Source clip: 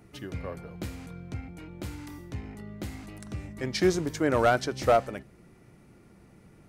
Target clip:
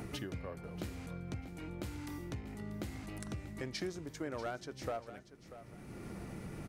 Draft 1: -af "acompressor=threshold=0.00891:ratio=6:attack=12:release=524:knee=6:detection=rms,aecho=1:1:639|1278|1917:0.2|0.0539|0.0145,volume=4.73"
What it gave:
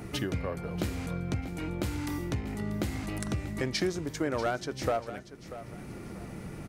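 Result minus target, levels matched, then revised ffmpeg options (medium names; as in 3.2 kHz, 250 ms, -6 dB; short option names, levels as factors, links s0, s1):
compression: peak gain reduction -10 dB
-af "acompressor=threshold=0.00224:ratio=6:attack=12:release=524:knee=6:detection=rms,aecho=1:1:639|1278|1917:0.2|0.0539|0.0145,volume=4.73"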